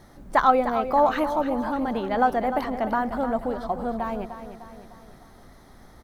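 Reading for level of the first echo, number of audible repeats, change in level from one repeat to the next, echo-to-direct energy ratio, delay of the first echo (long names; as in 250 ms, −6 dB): −10.5 dB, 4, −6.0 dB, −9.5 dB, 302 ms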